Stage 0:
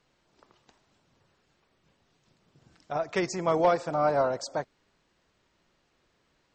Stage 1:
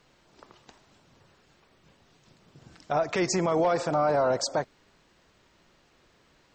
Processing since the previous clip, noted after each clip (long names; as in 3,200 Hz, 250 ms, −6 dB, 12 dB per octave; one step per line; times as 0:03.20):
brickwall limiter −24.5 dBFS, peak gain reduction 11.5 dB
level +8 dB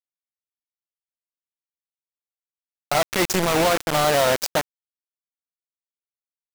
bit reduction 4 bits
level +3.5 dB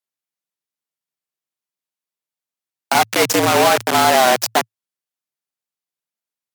frequency shifter +110 Hz
level +6 dB
MP3 128 kbit/s 48,000 Hz